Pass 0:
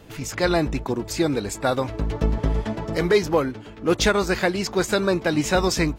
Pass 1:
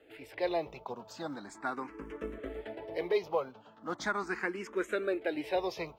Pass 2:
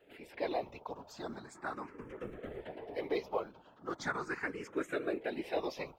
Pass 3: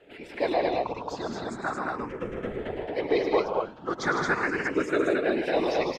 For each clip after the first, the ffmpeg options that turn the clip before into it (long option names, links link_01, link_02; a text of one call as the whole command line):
ffmpeg -i in.wav -filter_complex "[0:a]acrusher=bits=9:mode=log:mix=0:aa=0.000001,acrossover=split=260 3100:gain=0.112 1 0.224[link_01][link_02][link_03];[link_01][link_02][link_03]amix=inputs=3:normalize=0,asplit=2[link_04][link_05];[link_05]afreqshift=0.39[link_06];[link_04][link_06]amix=inputs=2:normalize=1,volume=-8dB" out.wav
ffmpeg -i in.wav -af "afftfilt=real='hypot(re,im)*cos(2*PI*random(0))':imag='hypot(re,im)*sin(2*PI*random(1))':win_size=512:overlap=0.75,volume=2.5dB" out.wav
ffmpeg -i in.wav -filter_complex "[0:a]lowpass=7200,asplit=2[link_01][link_02];[link_02]aecho=0:1:105|154.5|221.6:0.282|0.447|0.794[link_03];[link_01][link_03]amix=inputs=2:normalize=0,volume=9dB" out.wav